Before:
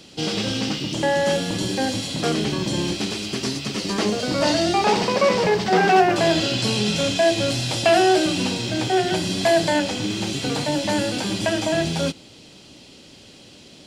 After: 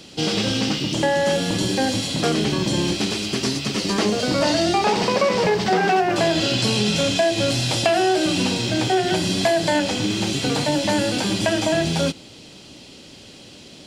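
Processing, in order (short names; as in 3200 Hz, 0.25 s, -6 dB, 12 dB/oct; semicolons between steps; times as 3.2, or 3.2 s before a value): compressor, threshold -18 dBFS, peak gain reduction 7.5 dB; gain +3 dB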